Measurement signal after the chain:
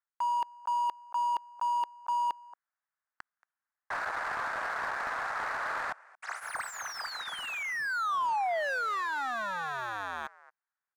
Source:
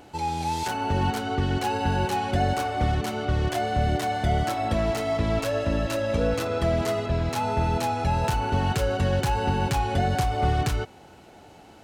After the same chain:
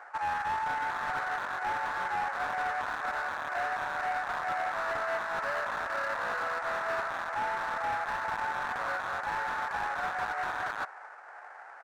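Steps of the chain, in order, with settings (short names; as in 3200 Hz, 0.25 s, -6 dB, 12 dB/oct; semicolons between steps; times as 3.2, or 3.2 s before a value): half-waves squared off; inverse Chebyshev high-pass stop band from 160 Hz, stop band 70 dB; resonant high shelf 2300 Hz -12.5 dB, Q 3; reverse; compressor 12:1, threshold -27 dBFS; reverse; air absorption 59 m; on a send: echo 0.228 s -23 dB; on the sum: downsampling 22050 Hz; slew limiter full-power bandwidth 43 Hz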